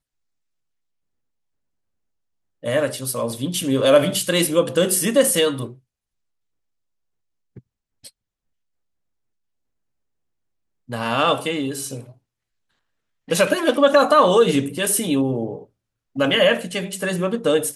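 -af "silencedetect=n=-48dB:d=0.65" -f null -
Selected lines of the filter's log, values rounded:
silence_start: 0.00
silence_end: 2.63 | silence_duration: 2.63
silence_start: 5.79
silence_end: 7.56 | silence_duration: 1.77
silence_start: 8.10
silence_end: 10.89 | silence_duration: 2.79
silence_start: 12.16
silence_end: 13.28 | silence_duration: 1.12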